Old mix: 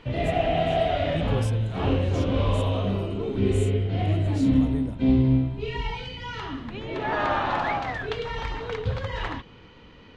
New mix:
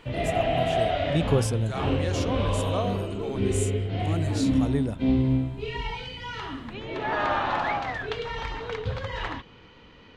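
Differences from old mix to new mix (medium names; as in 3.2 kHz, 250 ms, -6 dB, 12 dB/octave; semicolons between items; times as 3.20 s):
speech +9.5 dB; master: add bass shelf 420 Hz -3.5 dB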